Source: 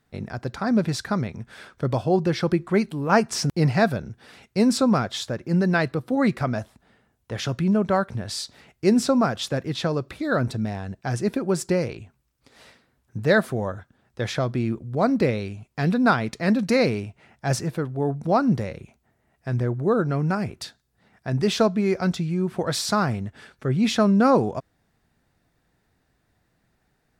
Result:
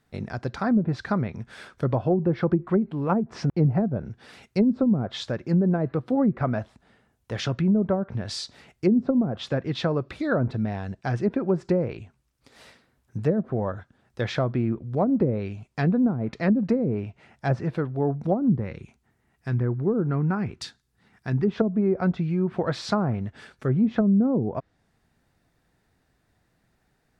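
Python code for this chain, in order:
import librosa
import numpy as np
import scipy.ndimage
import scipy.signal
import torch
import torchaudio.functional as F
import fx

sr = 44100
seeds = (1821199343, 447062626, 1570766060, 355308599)

y = fx.env_lowpass_down(x, sr, base_hz=300.0, full_db=-15.0)
y = fx.peak_eq(y, sr, hz=610.0, db=-9.0, octaves=0.54, at=(18.5, 21.56))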